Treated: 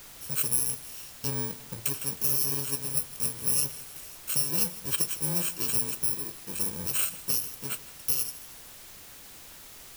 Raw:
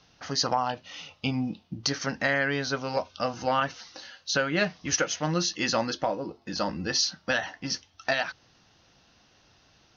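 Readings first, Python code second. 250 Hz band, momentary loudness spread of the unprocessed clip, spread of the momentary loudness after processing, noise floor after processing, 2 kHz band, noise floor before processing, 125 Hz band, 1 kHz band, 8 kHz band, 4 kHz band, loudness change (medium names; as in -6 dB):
-9.0 dB, 8 LU, 20 LU, -48 dBFS, -14.0 dB, -62 dBFS, -3.0 dB, -16.0 dB, no reading, -6.5 dB, +1.0 dB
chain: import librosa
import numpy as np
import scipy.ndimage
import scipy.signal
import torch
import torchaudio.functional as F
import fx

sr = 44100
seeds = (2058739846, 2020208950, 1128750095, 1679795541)

p1 = fx.bit_reversed(x, sr, seeds[0], block=64)
p2 = fx.graphic_eq(p1, sr, hz=(250, 1000, 2000, 4000), db=(-8, -5, -7, -5))
p3 = fx.dmg_noise_colour(p2, sr, seeds[1], colour='pink', level_db=-58.0)
p4 = p3 + fx.echo_feedback(p3, sr, ms=157, feedback_pct=48, wet_db=-18.0, dry=0)
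y = fx.quant_dither(p4, sr, seeds[2], bits=8, dither='triangular')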